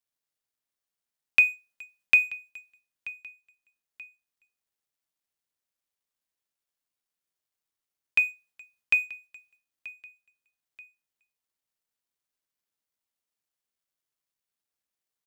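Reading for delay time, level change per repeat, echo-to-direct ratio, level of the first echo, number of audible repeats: 0.932 s, -7.0 dB, -18.5 dB, -19.5 dB, 2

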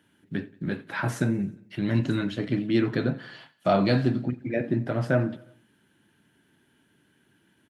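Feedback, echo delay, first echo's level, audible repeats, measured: 56%, 89 ms, -21.5 dB, 3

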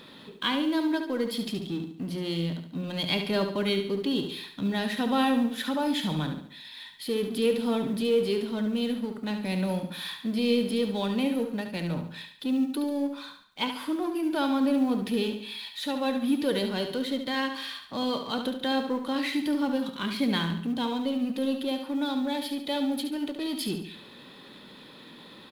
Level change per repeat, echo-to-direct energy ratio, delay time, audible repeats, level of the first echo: -7.5 dB, -7.0 dB, 71 ms, 4, -8.0 dB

